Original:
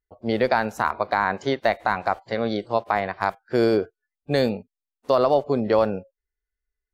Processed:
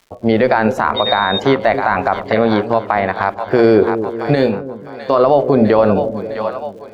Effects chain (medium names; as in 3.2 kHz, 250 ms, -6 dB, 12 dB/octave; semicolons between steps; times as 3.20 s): tone controls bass 0 dB, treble -9 dB; crackle 150 per s -52 dBFS; treble shelf 6.2 kHz -6 dB; hum notches 60/120/180/240/300/360/420/480/540 Hz; two-band feedback delay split 550 Hz, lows 261 ms, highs 655 ms, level -14 dB; 0.96–1.38 s: whistle 3.7 kHz -31 dBFS; 2.42–3.59 s: compression 2.5:1, threshold -25 dBFS, peak gain reduction 6.5 dB; 4.35–5.24 s: feedback comb 55 Hz, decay 0.24 s, harmonics odd, mix 70%; loudness maximiser +16 dB; trim -1 dB